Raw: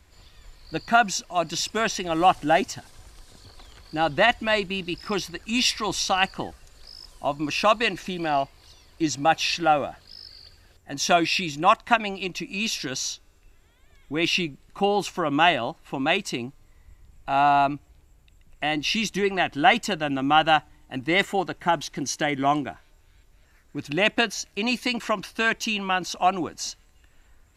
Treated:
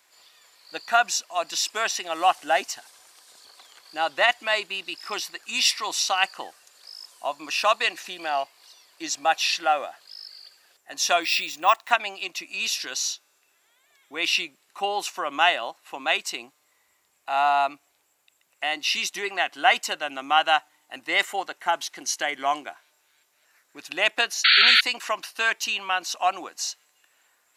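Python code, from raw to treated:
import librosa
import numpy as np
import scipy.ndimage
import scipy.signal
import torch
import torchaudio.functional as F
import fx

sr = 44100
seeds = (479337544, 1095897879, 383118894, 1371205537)

y = scipy.signal.sosfilt(scipy.signal.butter(2, 670.0, 'highpass', fs=sr, output='sos'), x)
y = fx.high_shelf(y, sr, hz=7300.0, db=6.5)
y = fx.resample_bad(y, sr, factor=2, down='none', up='hold', at=(11.22, 11.91))
y = fx.spec_paint(y, sr, seeds[0], shape='noise', start_s=24.44, length_s=0.37, low_hz=1300.0, high_hz=4600.0, level_db=-16.0)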